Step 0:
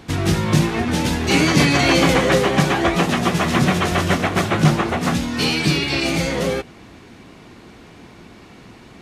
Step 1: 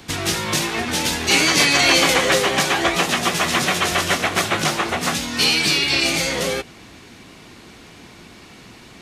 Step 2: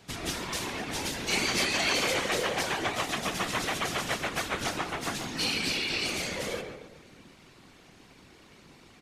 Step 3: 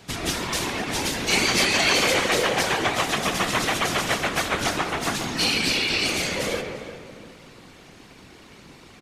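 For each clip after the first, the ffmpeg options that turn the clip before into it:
ffmpeg -i in.wav -filter_complex "[0:a]acrossover=split=340|470|4000[link_01][link_02][link_03][link_04];[link_01]acompressor=threshold=-27dB:ratio=6[link_05];[link_05][link_02][link_03][link_04]amix=inputs=4:normalize=0,highshelf=frequency=2100:gain=9.5,volume=-2dB" out.wav
ffmpeg -i in.wav -filter_complex "[0:a]asplit=2[link_01][link_02];[link_02]adelay=138,lowpass=frequency=1900:poles=1,volume=-5dB,asplit=2[link_03][link_04];[link_04]adelay=138,lowpass=frequency=1900:poles=1,volume=0.48,asplit=2[link_05][link_06];[link_06]adelay=138,lowpass=frequency=1900:poles=1,volume=0.48,asplit=2[link_07][link_08];[link_08]adelay=138,lowpass=frequency=1900:poles=1,volume=0.48,asplit=2[link_09][link_10];[link_10]adelay=138,lowpass=frequency=1900:poles=1,volume=0.48,asplit=2[link_11][link_12];[link_12]adelay=138,lowpass=frequency=1900:poles=1,volume=0.48[link_13];[link_01][link_03][link_05][link_07][link_09][link_11][link_13]amix=inputs=7:normalize=0,afftfilt=real='hypot(re,im)*cos(2*PI*random(0))':imag='hypot(re,im)*sin(2*PI*random(1))':win_size=512:overlap=0.75,volume=-6.5dB" out.wav
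ffmpeg -i in.wav -filter_complex "[0:a]asplit=2[link_01][link_02];[link_02]adelay=347,lowpass=frequency=2700:poles=1,volume=-11.5dB,asplit=2[link_03][link_04];[link_04]adelay=347,lowpass=frequency=2700:poles=1,volume=0.38,asplit=2[link_05][link_06];[link_06]adelay=347,lowpass=frequency=2700:poles=1,volume=0.38,asplit=2[link_07][link_08];[link_08]adelay=347,lowpass=frequency=2700:poles=1,volume=0.38[link_09];[link_01][link_03][link_05][link_07][link_09]amix=inputs=5:normalize=0,volume=7dB" out.wav

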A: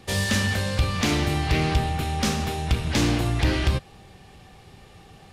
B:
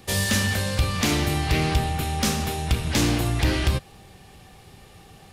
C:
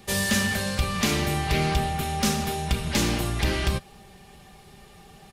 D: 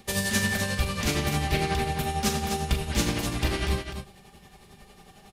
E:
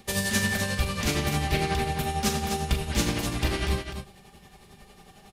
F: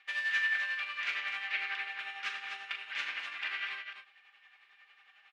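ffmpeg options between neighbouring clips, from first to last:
ffmpeg -i in.wav -af "highshelf=frequency=9800:gain=12" out.wav
ffmpeg -i in.wav -af "aecho=1:1:5:0.47,volume=-2dB" out.wav
ffmpeg -i in.wav -filter_complex "[0:a]tremolo=f=11:d=0.71,asplit=2[link_01][link_02];[link_02]aecho=0:1:41|253:0.376|0.447[link_03];[link_01][link_03]amix=inputs=2:normalize=0" out.wav
ffmpeg -i in.wav -af anull out.wav
ffmpeg -i in.wav -af "asuperpass=centerf=2000:order=4:qfactor=1.4" out.wav

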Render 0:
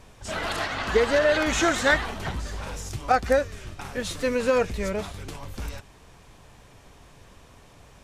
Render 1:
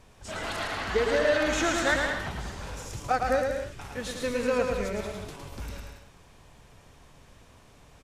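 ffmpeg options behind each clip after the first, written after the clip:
ffmpeg -i in.wav -af "aecho=1:1:110|187|240.9|278.6|305:0.631|0.398|0.251|0.158|0.1,volume=-5.5dB" out.wav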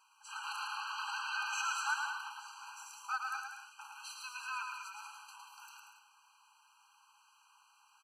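ffmpeg -i in.wav -af "afftfilt=real='re*eq(mod(floor(b*sr/1024/800),2),1)':imag='im*eq(mod(floor(b*sr/1024/800),2),1)':win_size=1024:overlap=0.75,volume=-4.5dB" out.wav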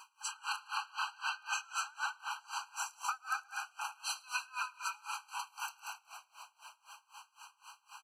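ffmpeg -i in.wav -filter_complex "[0:a]acompressor=threshold=-48dB:ratio=5,asplit=2[link_01][link_02];[link_02]asplit=7[link_03][link_04][link_05][link_06][link_07][link_08][link_09];[link_03]adelay=184,afreqshift=-34,volume=-11.5dB[link_10];[link_04]adelay=368,afreqshift=-68,volume=-15.7dB[link_11];[link_05]adelay=552,afreqshift=-102,volume=-19.8dB[link_12];[link_06]adelay=736,afreqshift=-136,volume=-24dB[link_13];[link_07]adelay=920,afreqshift=-170,volume=-28.1dB[link_14];[link_08]adelay=1104,afreqshift=-204,volume=-32.3dB[link_15];[link_09]adelay=1288,afreqshift=-238,volume=-36.4dB[link_16];[link_10][link_11][link_12][link_13][link_14][link_15][link_16]amix=inputs=7:normalize=0[link_17];[link_01][link_17]amix=inputs=2:normalize=0,aeval=exprs='val(0)*pow(10,-27*(0.5-0.5*cos(2*PI*3.9*n/s))/20)':channel_layout=same,volume=16dB" out.wav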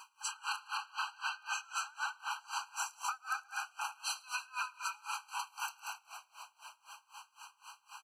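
ffmpeg -i in.wav -af "alimiter=level_in=2.5dB:limit=-24dB:level=0:latency=1:release=274,volume=-2.5dB,volume=1.5dB" out.wav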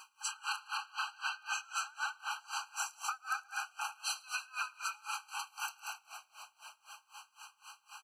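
ffmpeg -i in.wav -af "bandreject=frequency=980:width=6.9,volume=1dB" out.wav

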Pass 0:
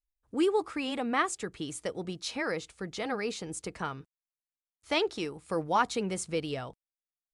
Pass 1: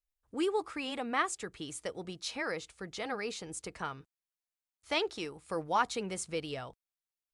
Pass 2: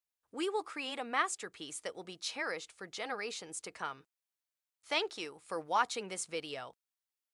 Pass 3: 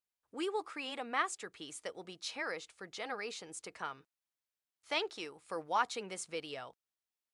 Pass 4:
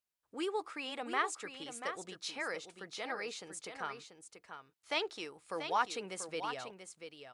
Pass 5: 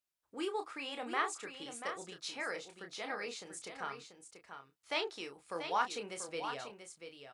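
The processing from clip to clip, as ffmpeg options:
ffmpeg -i in.wav -af "equalizer=frequency=210:width=0.55:gain=-4.5,volume=-2dB" out.wav
ffmpeg -i in.wav -af "highpass=frequency=510:poles=1" out.wav
ffmpeg -i in.wav -af "highshelf=frequency=7100:gain=-4.5,volume=-1.5dB" out.wav
ffmpeg -i in.wav -af "aecho=1:1:687:0.376" out.wav
ffmpeg -i in.wav -filter_complex "[0:a]asplit=2[link_01][link_02];[link_02]adelay=29,volume=-7dB[link_03];[link_01][link_03]amix=inputs=2:normalize=0,volume=-1.5dB" out.wav

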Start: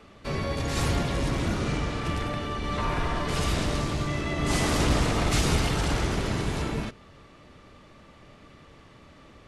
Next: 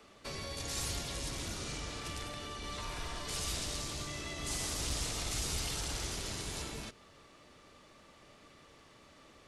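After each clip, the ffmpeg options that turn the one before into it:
ffmpeg -i in.wav -filter_complex "[0:a]bass=frequency=250:gain=-7,treble=frequency=4000:gain=8,acrossover=split=110|2800[link_01][link_02][link_03];[link_02]acompressor=threshold=-37dB:ratio=6[link_04];[link_03]alimiter=limit=-23.5dB:level=0:latency=1[link_05];[link_01][link_04][link_05]amix=inputs=3:normalize=0,volume=-6dB" out.wav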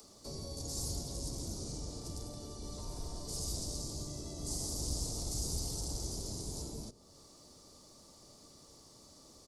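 ffmpeg -i in.wav -filter_complex "[0:a]firequalizer=gain_entry='entry(270,0);entry(900,-8);entry(1600,-26);entry(2700,-26);entry(4700,-2)':delay=0.05:min_phase=1,acrossover=split=160|1100[link_01][link_02][link_03];[link_03]acompressor=mode=upward:threshold=-50dB:ratio=2.5[link_04];[link_01][link_02][link_04]amix=inputs=3:normalize=0,volume=1dB" out.wav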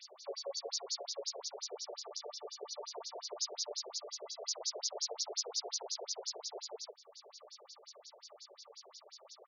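ffmpeg -i in.wav -af "afftfilt=real='re*between(b*sr/1024,500*pow(5100/500,0.5+0.5*sin(2*PI*5.6*pts/sr))/1.41,500*pow(5100/500,0.5+0.5*sin(2*PI*5.6*pts/sr))*1.41)':imag='im*between(b*sr/1024,500*pow(5100/500,0.5+0.5*sin(2*PI*5.6*pts/sr))/1.41,500*pow(5100/500,0.5+0.5*sin(2*PI*5.6*pts/sr))*1.41)':win_size=1024:overlap=0.75,volume=11dB" out.wav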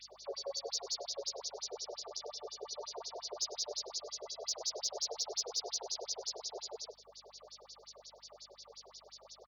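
ffmpeg -i in.wav -af "aecho=1:1:99:0.112,asoftclip=type=tanh:threshold=-22.5dB,aeval=exprs='val(0)+0.000158*(sin(2*PI*50*n/s)+sin(2*PI*2*50*n/s)/2+sin(2*PI*3*50*n/s)/3+sin(2*PI*4*50*n/s)/4+sin(2*PI*5*50*n/s)/5)':channel_layout=same,volume=1dB" out.wav

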